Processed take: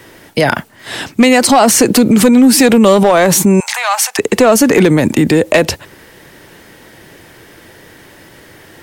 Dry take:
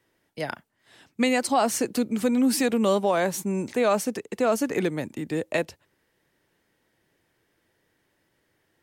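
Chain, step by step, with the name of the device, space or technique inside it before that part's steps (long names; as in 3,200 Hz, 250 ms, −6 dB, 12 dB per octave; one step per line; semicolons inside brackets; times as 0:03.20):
loud club master (downward compressor 2.5 to 1, threshold −24 dBFS, peak gain reduction 5.5 dB; hard clipping −20.5 dBFS, distortion −21 dB; boost into a limiter +32 dB)
0:03.60–0:04.19: elliptic high-pass filter 790 Hz, stop band 60 dB
level −1 dB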